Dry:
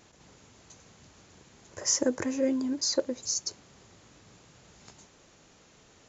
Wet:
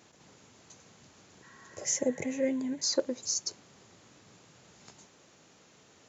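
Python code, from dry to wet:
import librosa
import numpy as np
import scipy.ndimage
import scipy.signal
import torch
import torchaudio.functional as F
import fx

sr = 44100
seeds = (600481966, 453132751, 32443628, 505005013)

y = scipy.signal.sosfilt(scipy.signal.butter(2, 110.0, 'highpass', fs=sr, output='sos'), x)
y = fx.spec_repair(y, sr, seeds[0], start_s=1.46, length_s=0.87, low_hz=870.0, high_hz=2000.0, source='after')
y = fx.graphic_eq_31(y, sr, hz=(160, 315, 1250, 2000, 5000), db=(9, -9, -11, 8, -12), at=(1.85, 2.84))
y = F.gain(torch.from_numpy(y), -1.0).numpy()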